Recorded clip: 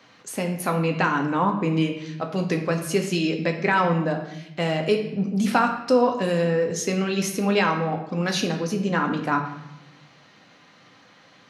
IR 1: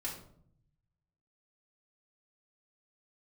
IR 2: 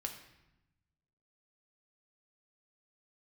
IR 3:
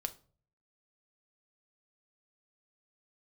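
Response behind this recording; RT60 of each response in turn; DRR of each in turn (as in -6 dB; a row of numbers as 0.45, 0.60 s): 2; 0.65 s, 0.90 s, not exponential; -5.5, 2.5, 7.0 dB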